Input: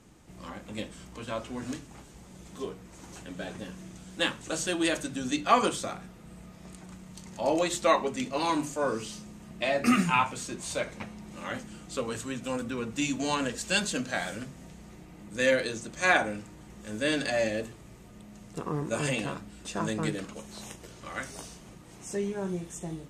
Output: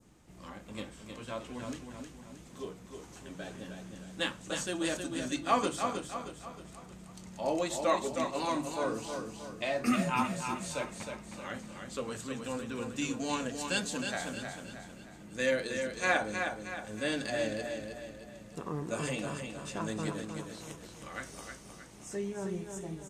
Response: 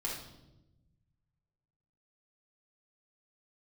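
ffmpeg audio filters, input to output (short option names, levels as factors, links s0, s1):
-af "adynamicequalizer=threshold=0.00794:dfrequency=2400:dqfactor=0.86:tfrequency=2400:tqfactor=0.86:attack=5:release=100:ratio=0.375:range=3:mode=cutabove:tftype=bell,aecho=1:1:313|626|939|1252|1565:0.501|0.226|0.101|0.0457|0.0206,volume=0.562"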